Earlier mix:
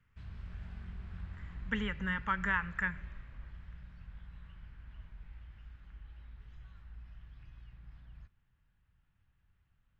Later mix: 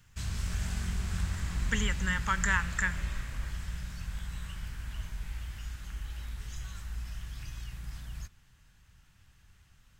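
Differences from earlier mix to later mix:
background +11.5 dB; master: remove distance through air 400 m

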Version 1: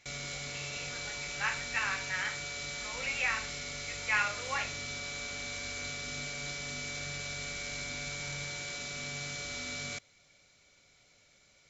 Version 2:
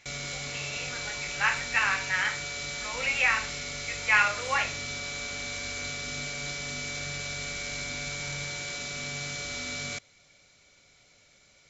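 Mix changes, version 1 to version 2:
speech +7.5 dB; background +4.0 dB

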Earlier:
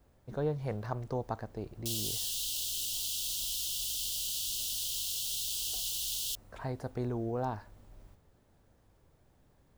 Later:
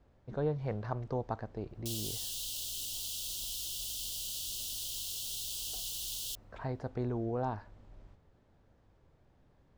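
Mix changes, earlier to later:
speech: add distance through air 120 m; background -4.0 dB

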